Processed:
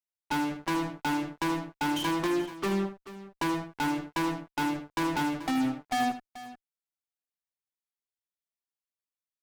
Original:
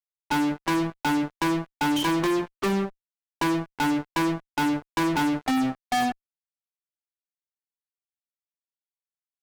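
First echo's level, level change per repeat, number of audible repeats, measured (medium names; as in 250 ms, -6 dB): -10.5 dB, no regular repeats, 2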